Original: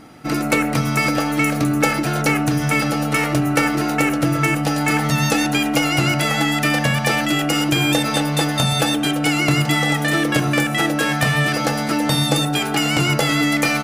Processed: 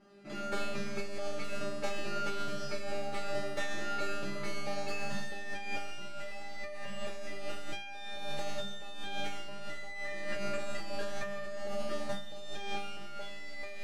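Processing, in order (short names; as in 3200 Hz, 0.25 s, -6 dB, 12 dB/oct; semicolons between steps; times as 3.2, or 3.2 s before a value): tracing distortion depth 0.29 ms; air absorption 76 m; notch 2200 Hz, Q 27; resonator 200 Hz, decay 1.2 s, mix 100%; small resonant body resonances 360/580 Hz, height 9 dB, ringing for 70 ms; negative-ratio compressor -35 dBFS, ratio -0.5; gain +3.5 dB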